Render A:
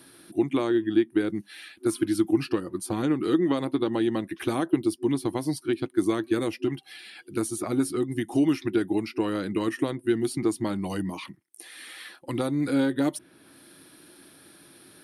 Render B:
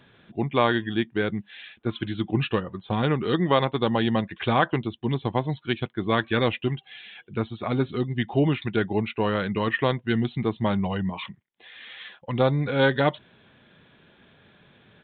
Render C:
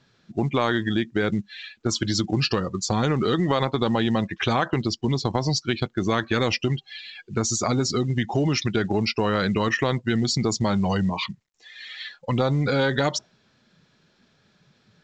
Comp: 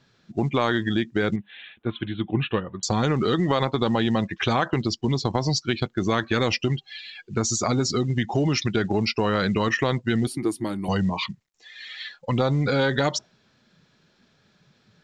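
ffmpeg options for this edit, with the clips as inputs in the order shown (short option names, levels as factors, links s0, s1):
-filter_complex "[2:a]asplit=3[s0][s1][s2];[s0]atrim=end=1.362[s3];[1:a]atrim=start=1.358:end=2.832[s4];[s1]atrim=start=2.828:end=10.272[s5];[0:a]atrim=start=10.268:end=10.882[s6];[s2]atrim=start=10.878[s7];[s3][s4]acrossfade=d=0.004:c1=hsin:c2=hsin[s8];[s8][s5]acrossfade=d=0.004:c1=hsin:c2=hsin[s9];[s9][s6]acrossfade=d=0.004:c1=hsin:c2=hsin[s10];[s10][s7]acrossfade=d=0.004:c1=hsin:c2=hsin"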